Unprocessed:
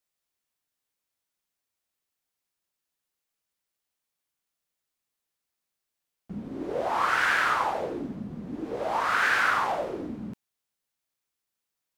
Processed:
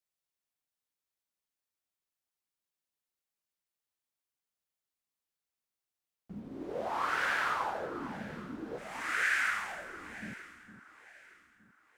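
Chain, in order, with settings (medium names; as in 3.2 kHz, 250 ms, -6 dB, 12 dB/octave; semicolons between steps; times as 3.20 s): short-mantissa float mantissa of 6-bit; 8.78–10.22 s: ten-band graphic EQ 125 Hz -9 dB, 250 Hz -9 dB, 500 Hz -9 dB, 1 kHz -10 dB, 2 kHz +9 dB, 4 kHz -5 dB, 8 kHz +8 dB; echo whose repeats swap between lows and highs 458 ms, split 1.4 kHz, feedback 56%, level -11 dB; trim -7.5 dB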